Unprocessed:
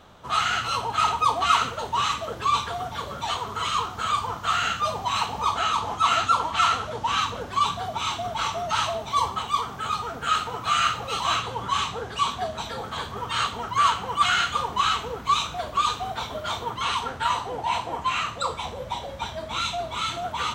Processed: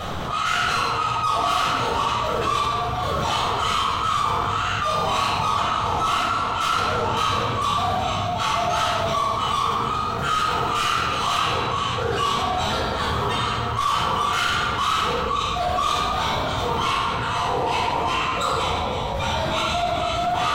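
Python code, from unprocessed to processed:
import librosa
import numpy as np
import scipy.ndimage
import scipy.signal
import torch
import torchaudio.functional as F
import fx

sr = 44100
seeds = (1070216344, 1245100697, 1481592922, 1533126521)

y = fx.step_gate(x, sr, bpm=134, pattern='xx..xxx....xxxx.', floor_db=-12.0, edge_ms=4.5)
y = 10.0 ** (-24.5 / 20.0) * np.tanh(y / 10.0 ** (-24.5 / 20.0))
y = fx.room_shoebox(y, sr, seeds[0], volume_m3=990.0, walls='mixed', distance_m=6.3)
y = fx.env_flatten(y, sr, amount_pct=70)
y = y * 10.0 ** (-7.0 / 20.0)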